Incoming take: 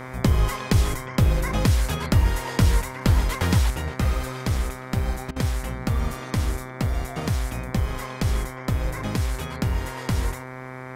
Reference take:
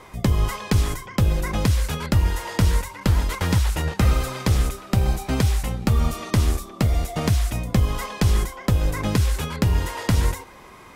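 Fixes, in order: de-hum 128.7 Hz, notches 18; interpolate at 5.31, 50 ms; gain correction +5 dB, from 3.7

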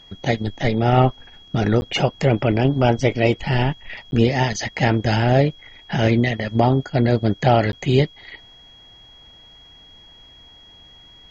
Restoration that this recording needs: notch 3300 Hz, Q 30; interpolate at 1.81/4.11/7.72, 11 ms

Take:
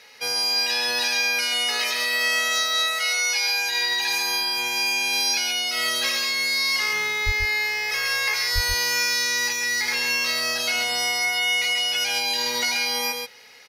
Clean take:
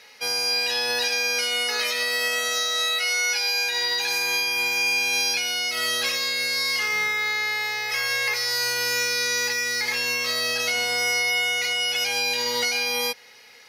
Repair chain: de-plosive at 7.25/8.54; inverse comb 0.135 s -5.5 dB

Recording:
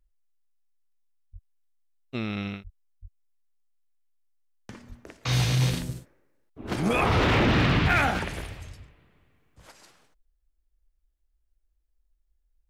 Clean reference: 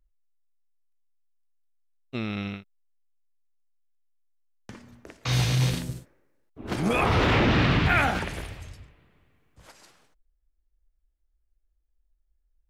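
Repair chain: clip repair -15 dBFS; de-plosive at 1.32/2.63/3.01/4.88/5.79

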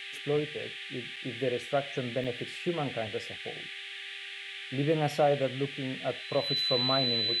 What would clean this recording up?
de-hum 394.6 Hz, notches 28; notch 4000 Hz, Q 30; interpolate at 1.16/2.24, 5 ms; noise print and reduce 30 dB

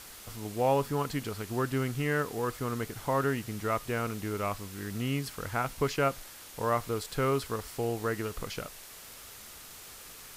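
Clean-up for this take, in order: denoiser 28 dB, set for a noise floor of -48 dBFS

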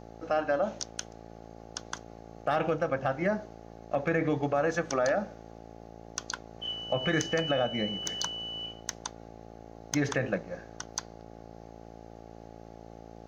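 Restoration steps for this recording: clip repair -17 dBFS; de-hum 56.2 Hz, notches 15

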